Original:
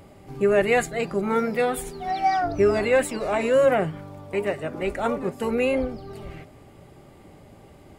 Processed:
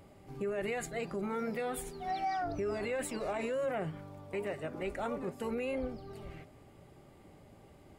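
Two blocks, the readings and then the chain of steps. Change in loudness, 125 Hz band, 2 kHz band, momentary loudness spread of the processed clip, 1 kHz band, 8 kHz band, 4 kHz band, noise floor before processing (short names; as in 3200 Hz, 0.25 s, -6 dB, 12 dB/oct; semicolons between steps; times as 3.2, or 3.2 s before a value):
-13.5 dB, -10.5 dB, -13.5 dB, 13 LU, -12.0 dB, -9.0 dB, -12.0 dB, -49 dBFS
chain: limiter -19 dBFS, peak gain reduction 9.5 dB; gain -8.5 dB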